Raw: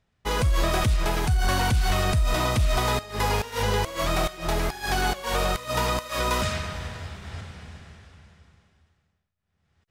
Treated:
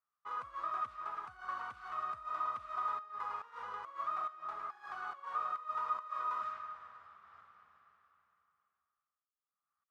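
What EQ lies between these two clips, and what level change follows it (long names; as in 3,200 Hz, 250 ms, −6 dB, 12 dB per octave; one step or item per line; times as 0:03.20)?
resonant band-pass 1,200 Hz, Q 14
0.0 dB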